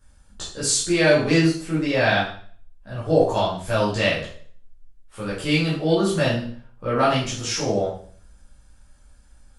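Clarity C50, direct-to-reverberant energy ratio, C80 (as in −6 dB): 4.0 dB, −10.0 dB, 8.5 dB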